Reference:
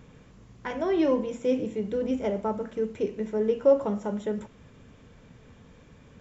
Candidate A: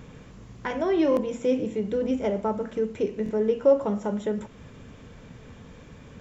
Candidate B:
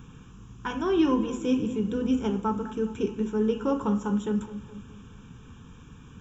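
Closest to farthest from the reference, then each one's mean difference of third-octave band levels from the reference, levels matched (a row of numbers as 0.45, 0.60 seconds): A, B; 2.0, 4.0 decibels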